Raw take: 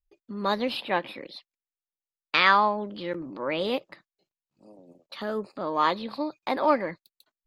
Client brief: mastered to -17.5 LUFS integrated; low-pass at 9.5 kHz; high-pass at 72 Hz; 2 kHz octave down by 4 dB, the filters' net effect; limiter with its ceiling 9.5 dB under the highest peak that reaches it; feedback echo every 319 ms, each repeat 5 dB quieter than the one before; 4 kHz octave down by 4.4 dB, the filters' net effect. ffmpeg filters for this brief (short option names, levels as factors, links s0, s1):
-af "highpass=72,lowpass=9500,equalizer=f=2000:t=o:g=-4,equalizer=f=4000:t=o:g=-4,alimiter=limit=0.133:level=0:latency=1,aecho=1:1:319|638|957|1276|1595|1914|2233:0.562|0.315|0.176|0.0988|0.0553|0.031|0.0173,volume=4.73"